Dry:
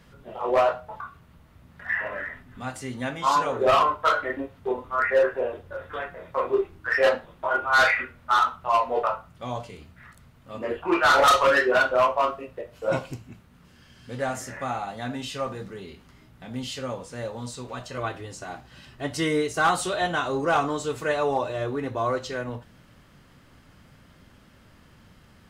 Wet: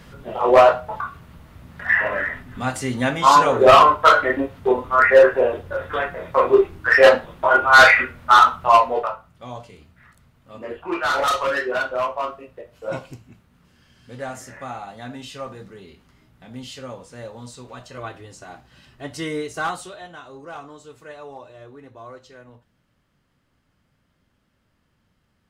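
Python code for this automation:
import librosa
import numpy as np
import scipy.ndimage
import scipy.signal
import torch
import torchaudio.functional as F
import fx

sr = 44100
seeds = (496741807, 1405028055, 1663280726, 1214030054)

y = fx.gain(x, sr, db=fx.line((8.74, 9.0), (9.16, -3.0), (19.63, -3.0), (20.04, -14.0)))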